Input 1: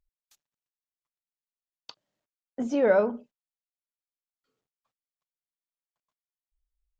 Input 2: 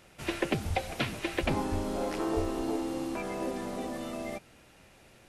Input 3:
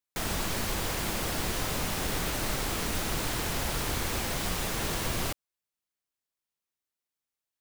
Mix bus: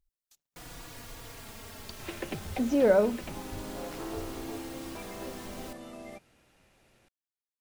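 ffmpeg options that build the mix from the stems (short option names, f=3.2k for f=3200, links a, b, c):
-filter_complex "[0:a]equalizer=f=1.6k:w=0.41:g=-7,volume=2.5dB,asplit=2[a][b];[1:a]adelay=1800,volume=-7.5dB[c];[2:a]asplit=2[d][e];[e]adelay=3.6,afreqshift=-0.32[f];[d][f]amix=inputs=2:normalize=1,adelay=400,volume=-11.5dB[g];[b]apad=whole_len=312417[h];[c][h]sidechaincompress=threshold=-27dB:ratio=8:attack=16:release=840[i];[a][i][g]amix=inputs=3:normalize=0"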